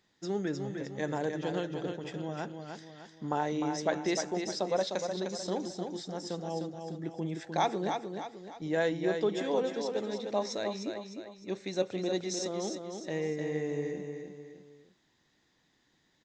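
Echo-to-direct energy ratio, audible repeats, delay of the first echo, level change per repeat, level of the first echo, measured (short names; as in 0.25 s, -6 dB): -5.0 dB, 3, 0.304 s, -7.5 dB, -6.0 dB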